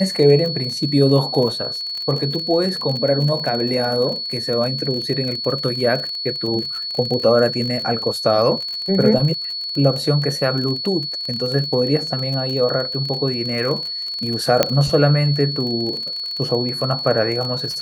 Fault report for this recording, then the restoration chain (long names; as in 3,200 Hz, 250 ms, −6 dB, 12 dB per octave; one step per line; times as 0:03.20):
surface crackle 35 per second −24 dBFS
whistle 4,400 Hz −24 dBFS
0:14.63: click 0 dBFS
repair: click removal
notch filter 4,400 Hz, Q 30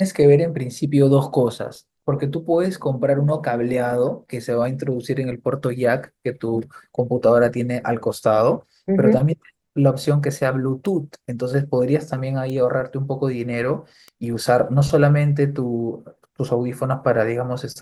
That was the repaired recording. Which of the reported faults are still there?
none of them is left